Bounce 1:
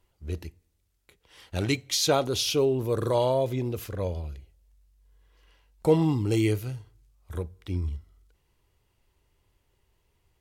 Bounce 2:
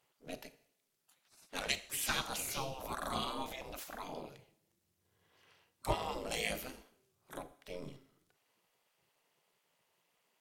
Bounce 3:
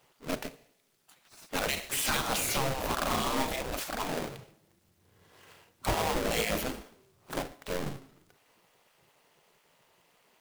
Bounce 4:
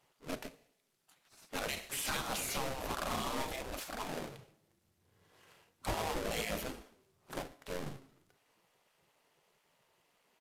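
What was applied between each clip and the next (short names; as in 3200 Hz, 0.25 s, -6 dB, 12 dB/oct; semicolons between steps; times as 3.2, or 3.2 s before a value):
AM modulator 270 Hz, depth 65%; Schroeder reverb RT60 0.68 s, combs from 26 ms, DRR 14 dB; spectral gate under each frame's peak -15 dB weak; gain +2.5 dB
half-waves squared off; limiter -28.5 dBFS, peak gain reduction 10.5 dB; gain +7 dB
flange 0.31 Hz, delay 0.9 ms, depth 8 ms, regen -78%; downsampling 32000 Hz; gain -2.5 dB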